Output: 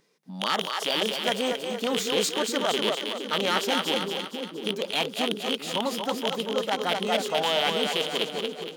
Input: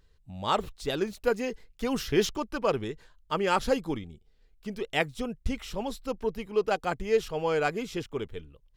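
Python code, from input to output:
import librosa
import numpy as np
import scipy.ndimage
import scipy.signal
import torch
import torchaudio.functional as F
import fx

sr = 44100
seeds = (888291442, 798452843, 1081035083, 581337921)

p1 = fx.rattle_buzz(x, sr, strikes_db=-37.0, level_db=-15.0)
p2 = fx.over_compress(p1, sr, threshold_db=-31.0, ratio=-1.0)
p3 = p1 + (p2 * librosa.db_to_amplitude(0.0))
p4 = fx.clip_asym(p3, sr, top_db=-16.0, bottom_db=-11.0)
p5 = p4 + fx.echo_split(p4, sr, split_hz=380.0, low_ms=661, high_ms=233, feedback_pct=52, wet_db=-4.5, dry=0)
p6 = fx.formant_shift(p5, sr, semitones=4)
p7 = fx.brickwall_highpass(p6, sr, low_hz=160.0)
y = p7 * librosa.db_to_amplitude(-3.0)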